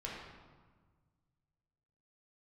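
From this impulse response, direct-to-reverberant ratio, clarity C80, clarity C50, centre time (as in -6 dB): -4.5 dB, 2.5 dB, 0.5 dB, 77 ms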